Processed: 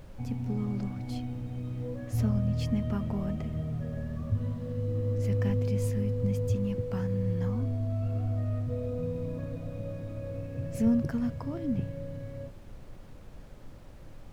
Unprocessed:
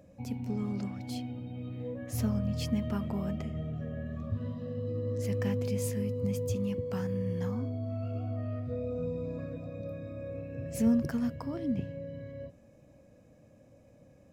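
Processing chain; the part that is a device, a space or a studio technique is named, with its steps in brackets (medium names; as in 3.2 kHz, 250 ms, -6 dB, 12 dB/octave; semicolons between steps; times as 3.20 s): car interior (peaking EQ 110 Hz +6 dB 0.88 oct; treble shelf 4.1 kHz -7 dB; brown noise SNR 14 dB)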